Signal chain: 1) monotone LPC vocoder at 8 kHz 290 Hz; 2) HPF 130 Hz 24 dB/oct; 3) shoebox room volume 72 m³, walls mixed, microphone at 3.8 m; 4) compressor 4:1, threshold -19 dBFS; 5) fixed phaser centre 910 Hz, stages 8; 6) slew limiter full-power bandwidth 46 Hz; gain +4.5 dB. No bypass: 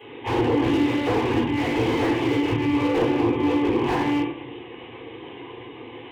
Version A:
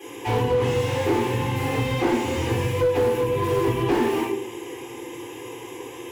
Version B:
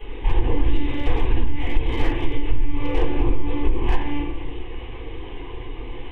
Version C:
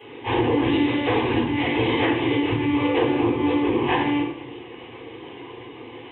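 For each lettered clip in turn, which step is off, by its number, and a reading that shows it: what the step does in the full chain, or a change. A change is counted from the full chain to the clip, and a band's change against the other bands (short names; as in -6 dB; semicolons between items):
1, 250 Hz band -5.5 dB; 2, 125 Hz band +8.5 dB; 6, distortion -12 dB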